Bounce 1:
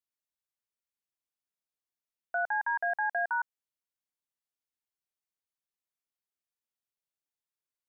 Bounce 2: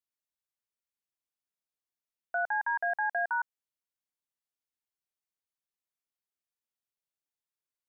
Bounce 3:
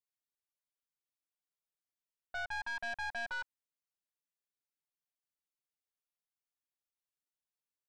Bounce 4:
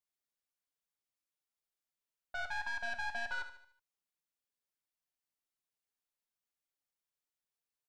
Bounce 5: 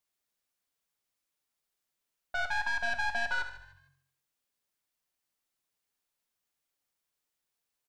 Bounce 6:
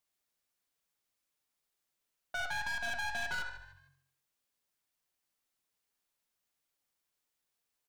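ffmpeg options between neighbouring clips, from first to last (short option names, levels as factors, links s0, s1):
-af anull
-af "aecho=1:1:6.8:0.79,aeval=exprs='(tanh(28.2*val(0)+0.45)-tanh(0.45))/28.2':c=same,volume=0.473"
-filter_complex "[0:a]asplit=2[s0][s1];[s1]aecho=0:1:74|148|222|296|370:0.282|0.13|0.0596|0.0274|0.0126[s2];[s0][s2]amix=inputs=2:normalize=0,flanger=delay=1.2:depth=4.7:regen=73:speed=1.8:shape=triangular,volume=1.58"
-filter_complex "[0:a]asplit=4[s0][s1][s2][s3];[s1]adelay=152,afreqshift=45,volume=0.0891[s4];[s2]adelay=304,afreqshift=90,volume=0.0376[s5];[s3]adelay=456,afreqshift=135,volume=0.0157[s6];[s0][s4][s5][s6]amix=inputs=4:normalize=0,volume=2.24"
-af "asoftclip=type=hard:threshold=0.0224"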